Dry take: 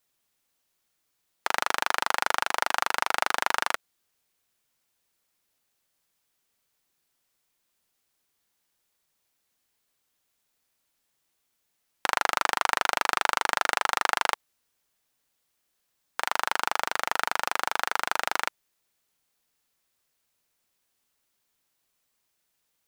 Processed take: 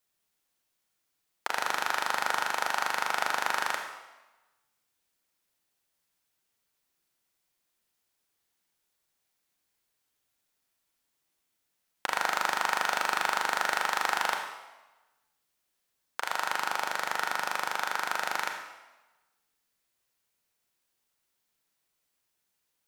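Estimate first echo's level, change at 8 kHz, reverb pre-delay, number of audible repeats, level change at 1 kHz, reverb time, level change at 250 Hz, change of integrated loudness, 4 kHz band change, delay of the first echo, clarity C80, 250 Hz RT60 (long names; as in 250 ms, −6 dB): no echo audible, −3.0 dB, 29 ms, no echo audible, −2.5 dB, 1.1 s, −2.5 dB, −2.5 dB, −3.0 dB, no echo audible, 7.0 dB, 1.0 s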